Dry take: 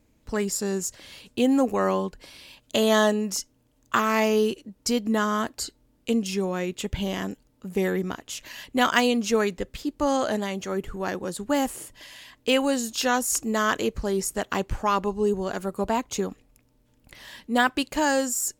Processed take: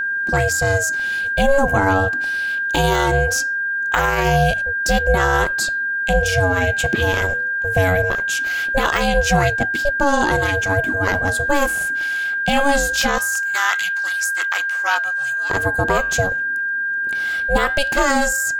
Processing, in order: de-esser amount 50%; 13.18–15.5 HPF 1200 Hz 24 dB/oct; ring modulator 280 Hz; flange 0.21 Hz, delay 4.2 ms, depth 7.8 ms, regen -87%; whine 1600 Hz -35 dBFS; maximiser +20 dB; gain -4 dB

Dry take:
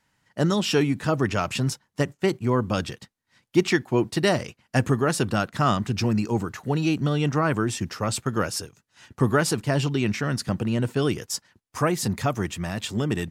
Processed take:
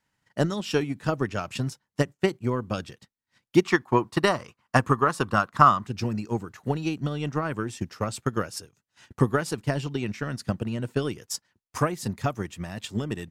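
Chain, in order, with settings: 3.65–5.86 bell 1100 Hz +14 dB 0.69 oct; transient shaper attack +9 dB, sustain -3 dB; gain -7.5 dB

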